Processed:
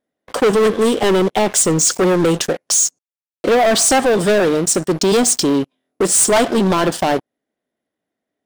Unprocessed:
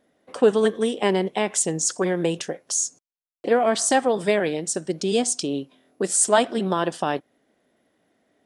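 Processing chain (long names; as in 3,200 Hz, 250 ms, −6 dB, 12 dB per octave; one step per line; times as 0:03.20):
dynamic equaliser 2,300 Hz, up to −6 dB, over −45 dBFS, Q 2.4
leveller curve on the samples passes 5
level −4 dB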